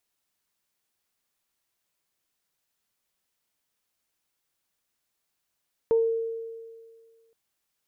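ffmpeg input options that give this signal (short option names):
-f lavfi -i "aevalsrc='0.141*pow(10,-3*t/1.87)*sin(2*PI*455*t)+0.0168*pow(10,-3*t/0.3)*sin(2*PI*910*t)':d=1.42:s=44100"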